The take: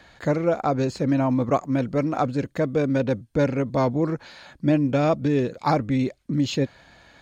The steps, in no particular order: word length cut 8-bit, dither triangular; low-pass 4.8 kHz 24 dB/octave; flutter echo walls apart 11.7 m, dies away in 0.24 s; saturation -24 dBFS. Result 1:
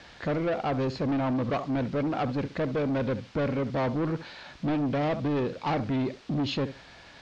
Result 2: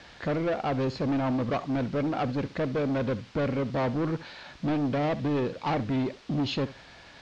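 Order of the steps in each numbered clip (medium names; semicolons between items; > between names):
flutter echo > word length cut > saturation > low-pass; saturation > flutter echo > word length cut > low-pass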